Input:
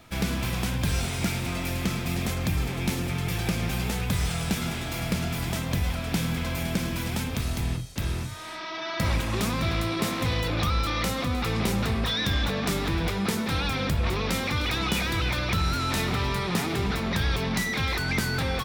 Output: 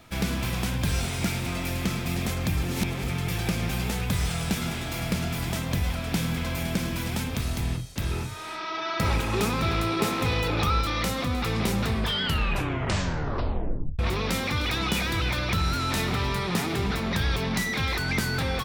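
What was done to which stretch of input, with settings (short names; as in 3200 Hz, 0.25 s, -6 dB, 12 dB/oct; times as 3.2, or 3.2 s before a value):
2.63–3.08 reverse
8.11–10.81 small resonant body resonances 420/850/1300/2500 Hz, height 9 dB
11.94 tape stop 2.05 s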